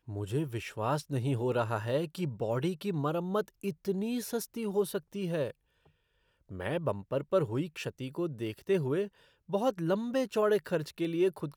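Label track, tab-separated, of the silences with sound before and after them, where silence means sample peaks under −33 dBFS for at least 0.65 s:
5.510000	6.540000	silence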